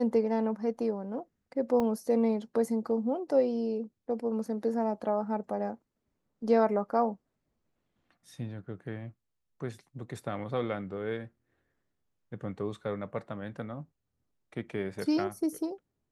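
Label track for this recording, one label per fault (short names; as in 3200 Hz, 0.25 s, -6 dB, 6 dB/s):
1.800000	1.800000	gap 2 ms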